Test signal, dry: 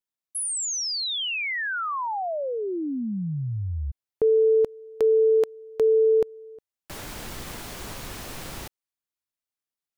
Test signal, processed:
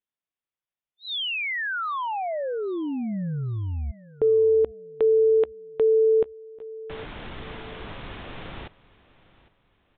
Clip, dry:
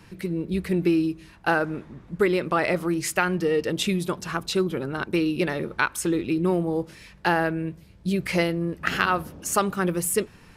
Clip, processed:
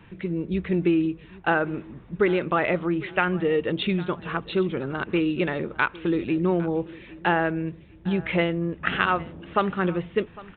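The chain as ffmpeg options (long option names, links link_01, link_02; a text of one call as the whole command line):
ffmpeg -i in.wav -filter_complex "[0:a]asplit=2[link_01][link_02];[link_02]aecho=0:1:805|1610|2415:0.1|0.035|0.0123[link_03];[link_01][link_03]amix=inputs=2:normalize=0,aresample=8000,aresample=44100" out.wav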